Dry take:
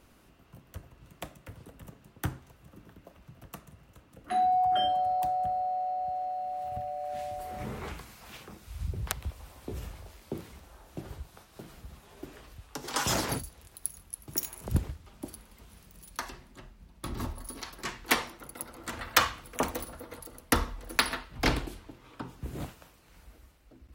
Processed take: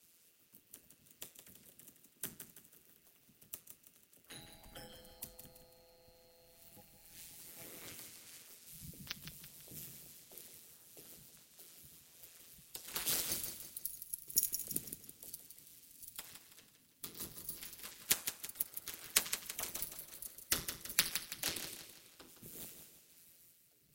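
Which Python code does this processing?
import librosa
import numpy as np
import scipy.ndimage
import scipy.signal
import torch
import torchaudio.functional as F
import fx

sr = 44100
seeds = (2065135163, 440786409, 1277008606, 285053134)

p1 = fx.riaa(x, sr, side='recording')
p2 = p1 * np.sin(2.0 * np.pi * 84.0 * np.arange(len(p1)) / sr)
p3 = fx.tone_stack(p2, sr, knobs='10-0-1')
p4 = fx.spec_gate(p3, sr, threshold_db=-10, keep='weak')
p5 = p4 + fx.echo_feedback(p4, sr, ms=165, feedback_pct=44, wet_db=-8.5, dry=0)
y = p5 * librosa.db_to_amplitude(15.0)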